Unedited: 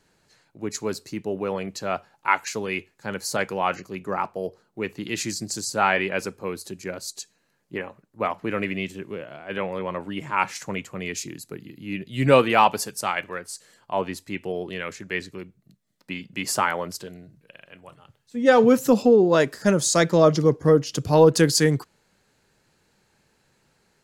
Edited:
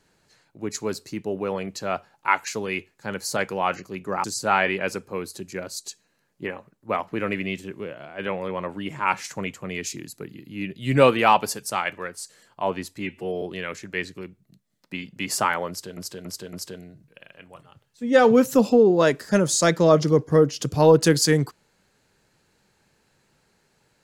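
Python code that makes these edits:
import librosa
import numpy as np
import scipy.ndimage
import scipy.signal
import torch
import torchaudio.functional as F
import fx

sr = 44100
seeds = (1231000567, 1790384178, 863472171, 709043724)

y = fx.edit(x, sr, fx.cut(start_s=4.24, length_s=1.31),
    fx.stretch_span(start_s=14.31, length_s=0.28, factor=1.5),
    fx.repeat(start_s=16.86, length_s=0.28, count=4), tone=tone)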